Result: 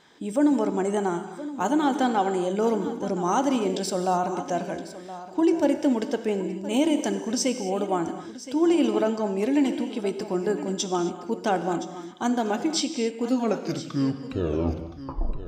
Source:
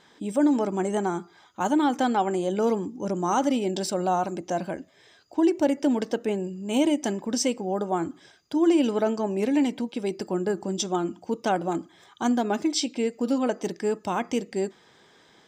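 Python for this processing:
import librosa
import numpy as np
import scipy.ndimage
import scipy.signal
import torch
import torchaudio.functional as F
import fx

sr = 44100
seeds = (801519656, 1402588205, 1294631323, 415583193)

y = fx.tape_stop_end(x, sr, length_s=2.25)
y = y + 10.0 ** (-14.5 / 20.0) * np.pad(y, (int(1019 * sr / 1000.0), 0))[:len(y)]
y = fx.rev_gated(y, sr, seeds[0], gate_ms=290, shape='flat', drr_db=8.5)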